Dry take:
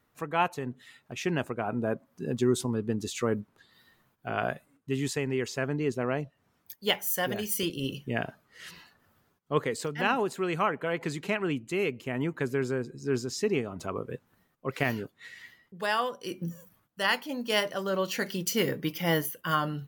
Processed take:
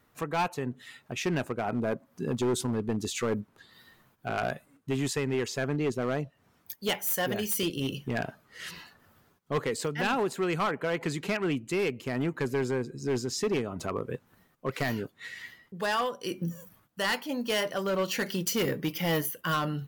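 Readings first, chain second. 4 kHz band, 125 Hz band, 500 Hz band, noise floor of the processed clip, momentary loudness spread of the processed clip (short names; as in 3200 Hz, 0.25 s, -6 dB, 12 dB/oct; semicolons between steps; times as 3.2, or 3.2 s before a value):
-0.5 dB, +0.5 dB, 0.0 dB, -67 dBFS, 11 LU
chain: in parallel at -2 dB: compressor, threshold -40 dBFS, peak gain reduction 19 dB; on the sum: hard clip -23 dBFS, distortion -11 dB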